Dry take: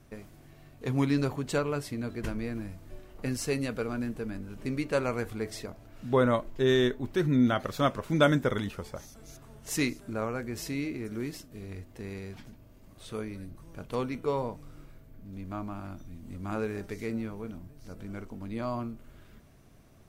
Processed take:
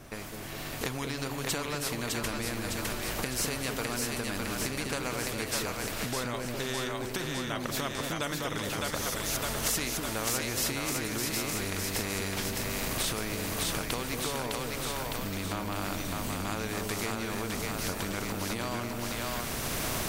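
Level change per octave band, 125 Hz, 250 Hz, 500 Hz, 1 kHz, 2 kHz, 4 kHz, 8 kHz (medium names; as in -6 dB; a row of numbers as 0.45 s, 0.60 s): -2.5 dB, -4.5 dB, -4.0 dB, +1.5 dB, +4.0 dB, +8.0 dB, +12.5 dB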